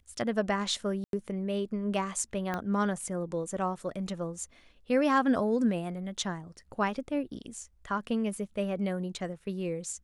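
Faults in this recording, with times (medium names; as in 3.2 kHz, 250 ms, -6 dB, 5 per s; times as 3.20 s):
1.04–1.13 s: dropout 92 ms
2.54 s: pop -19 dBFS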